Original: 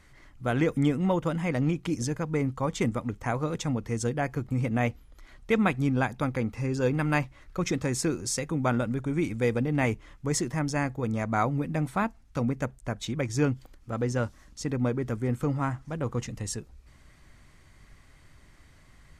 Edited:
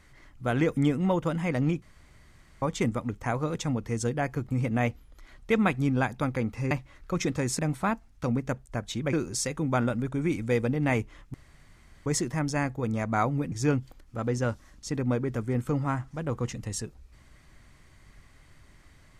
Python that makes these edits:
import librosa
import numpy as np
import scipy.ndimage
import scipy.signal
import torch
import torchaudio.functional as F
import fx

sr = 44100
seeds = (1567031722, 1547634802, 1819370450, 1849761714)

y = fx.edit(x, sr, fx.room_tone_fill(start_s=1.82, length_s=0.8),
    fx.cut(start_s=6.71, length_s=0.46),
    fx.insert_room_tone(at_s=10.26, length_s=0.72),
    fx.move(start_s=11.72, length_s=1.54, to_s=8.05), tone=tone)